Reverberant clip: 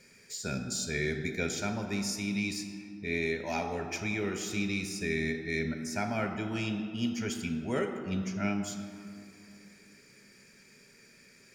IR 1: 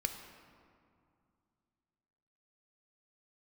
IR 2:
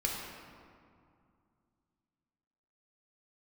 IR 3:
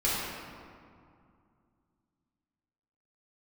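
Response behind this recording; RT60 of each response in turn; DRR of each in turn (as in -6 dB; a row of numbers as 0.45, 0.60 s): 1; 2.4, 2.3, 2.3 s; 5.5, -2.5, -9.0 dB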